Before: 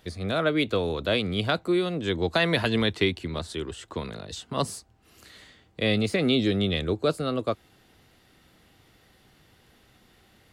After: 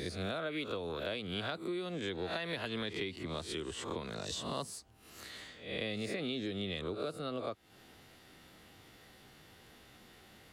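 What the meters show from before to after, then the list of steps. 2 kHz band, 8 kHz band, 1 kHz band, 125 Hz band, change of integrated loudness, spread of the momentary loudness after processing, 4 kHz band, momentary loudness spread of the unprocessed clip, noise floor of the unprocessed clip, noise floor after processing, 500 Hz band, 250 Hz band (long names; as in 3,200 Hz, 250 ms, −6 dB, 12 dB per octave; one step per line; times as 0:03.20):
−11.5 dB, −5.0 dB, −10.5 dB, −14.0 dB, −12.5 dB, 20 LU, −10.5 dB, 12 LU, −60 dBFS, −60 dBFS, −12.0 dB, −13.0 dB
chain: peak hold with a rise ahead of every peak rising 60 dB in 0.45 s
low-shelf EQ 120 Hz −6.5 dB
downward compressor 6 to 1, threshold −36 dBFS, peak gain reduction 17.5 dB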